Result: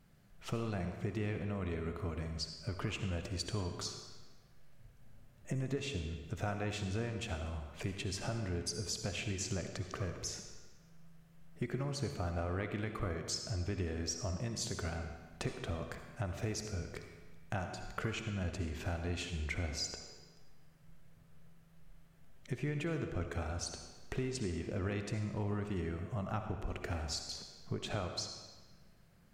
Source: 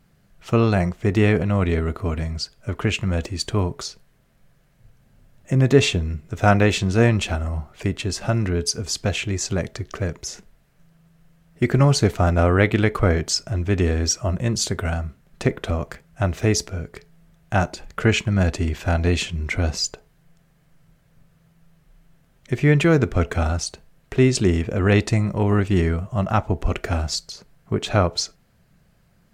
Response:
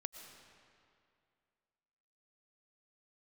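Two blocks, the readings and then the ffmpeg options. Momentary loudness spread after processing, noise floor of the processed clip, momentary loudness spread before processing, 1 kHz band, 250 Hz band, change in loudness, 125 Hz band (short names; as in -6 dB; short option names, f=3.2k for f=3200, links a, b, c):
6 LU, -61 dBFS, 11 LU, -18.0 dB, -18.5 dB, -18.0 dB, -18.0 dB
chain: -filter_complex "[0:a]acompressor=threshold=-30dB:ratio=5[a];[1:a]atrim=start_sample=2205,asetrate=79380,aresample=44100[b];[a][b]afir=irnorm=-1:irlink=0,volume=2.5dB"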